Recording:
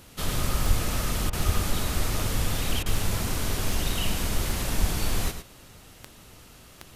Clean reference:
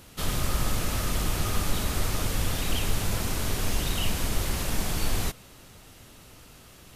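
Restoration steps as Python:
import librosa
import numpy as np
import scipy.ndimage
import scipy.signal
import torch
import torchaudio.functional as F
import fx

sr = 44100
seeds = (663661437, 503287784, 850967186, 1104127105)

y = fx.fix_declick_ar(x, sr, threshold=10.0)
y = fx.fix_deplosive(y, sr, at_s=(0.67, 1.45, 4.8))
y = fx.fix_interpolate(y, sr, at_s=(1.3, 2.83), length_ms=28.0)
y = fx.fix_echo_inverse(y, sr, delay_ms=107, level_db=-9.0)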